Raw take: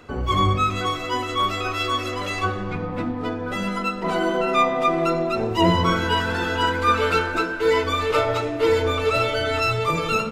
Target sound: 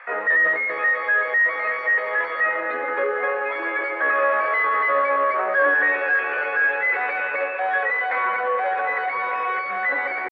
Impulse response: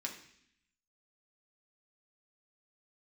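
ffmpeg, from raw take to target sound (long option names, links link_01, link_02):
-filter_complex "[0:a]asplit=2[link_01][link_02];[link_02]highpass=frequency=720:poles=1,volume=26dB,asoftclip=type=tanh:threshold=-6dB[link_03];[link_01][link_03]amix=inputs=2:normalize=0,lowpass=frequency=1300:poles=1,volume=-6dB,asetrate=74167,aresample=44100,atempo=0.594604,acrossover=split=730[link_04][link_05];[link_04]acrusher=bits=4:mix=0:aa=0.000001[link_06];[link_06][link_05]amix=inputs=2:normalize=0,highpass=frequency=330:width=0.5412,highpass=frequency=330:width=1.3066,equalizer=frequency=340:width_type=q:width=4:gain=-5,equalizer=frequency=540:width_type=q:width=4:gain=9,equalizer=frequency=810:width_type=q:width=4:gain=-7,equalizer=frequency=1300:width_type=q:width=4:gain=4,equalizer=frequency=1800:width_type=q:width=4:gain=7,lowpass=frequency=2000:width=0.5412,lowpass=frequency=2000:width=1.3066,bandreject=frequency=600:width=12,volume=-7dB"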